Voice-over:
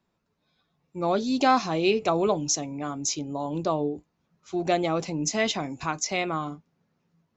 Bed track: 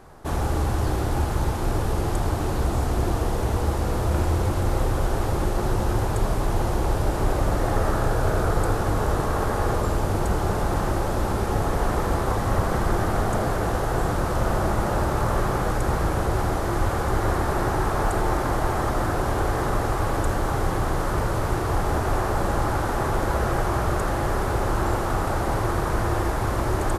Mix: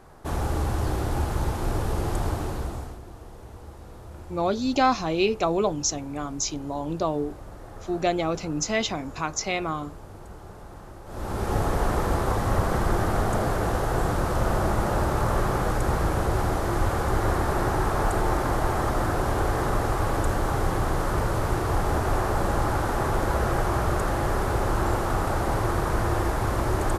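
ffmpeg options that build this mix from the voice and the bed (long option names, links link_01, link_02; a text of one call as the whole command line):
ffmpeg -i stem1.wav -i stem2.wav -filter_complex "[0:a]adelay=3350,volume=0dB[link_01];[1:a]volume=16dB,afade=type=out:start_time=2.27:duration=0.73:silence=0.141254,afade=type=in:start_time=11.05:duration=0.51:silence=0.11885[link_02];[link_01][link_02]amix=inputs=2:normalize=0" out.wav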